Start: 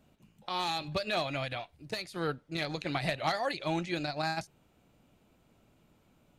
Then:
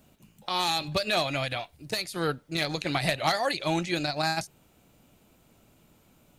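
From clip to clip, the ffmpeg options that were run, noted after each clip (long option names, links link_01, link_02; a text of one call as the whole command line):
ffmpeg -i in.wav -af "highshelf=frequency=6100:gain=11,volume=4.5dB" out.wav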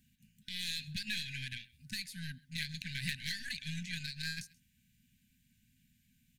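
ffmpeg -i in.wav -af "aecho=1:1:132:0.0668,aeval=exprs='0.299*(cos(1*acos(clip(val(0)/0.299,-1,1)))-cos(1*PI/2))+0.0211*(cos(6*acos(clip(val(0)/0.299,-1,1)))-cos(6*PI/2))+0.0335*(cos(8*acos(clip(val(0)/0.299,-1,1)))-cos(8*PI/2))':channel_layout=same,afftfilt=real='re*(1-between(b*sr/4096,260,1500))':imag='im*(1-between(b*sr/4096,260,1500))':win_size=4096:overlap=0.75,volume=-9dB" out.wav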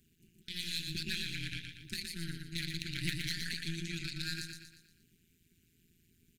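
ffmpeg -i in.wav -filter_complex "[0:a]tremolo=f=170:d=0.889,equalizer=frequency=1300:width_type=o:width=2.4:gain=-3.5,asplit=2[link_01][link_02];[link_02]aecho=0:1:118|236|354|472|590|708:0.562|0.259|0.119|0.0547|0.0252|0.0116[link_03];[link_01][link_03]amix=inputs=2:normalize=0,volume=5dB" out.wav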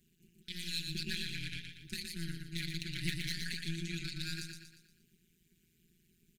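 ffmpeg -i in.wav -af "aecho=1:1:5.4:0.65,volume=-3dB" out.wav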